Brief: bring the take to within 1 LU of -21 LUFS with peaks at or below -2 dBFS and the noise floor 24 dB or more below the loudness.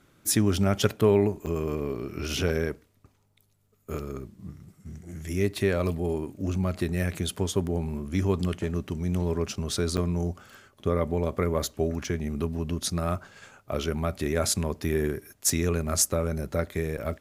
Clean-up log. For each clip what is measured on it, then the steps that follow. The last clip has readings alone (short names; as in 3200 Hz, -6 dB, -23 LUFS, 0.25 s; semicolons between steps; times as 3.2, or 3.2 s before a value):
dropouts 3; longest dropout 7.2 ms; loudness -28.0 LUFS; peak -7.5 dBFS; loudness target -21.0 LUFS
-> interpolate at 1.46/9.97/16.97, 7.2 ms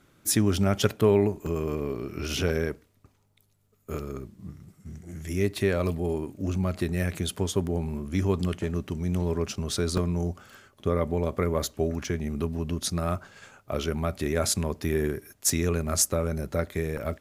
dropouts 0; loudness -28.0 LUFS; peak -7.5 dBFS; loudness target -21.0 LUFS
-> gain +7 dB; limiter -2 dBFS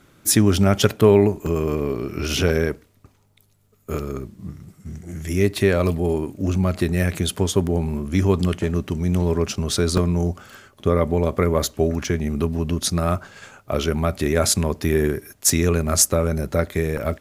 loudness -21.0 LUFS; peak -2.0 dBFS; noise floor -59 dBFS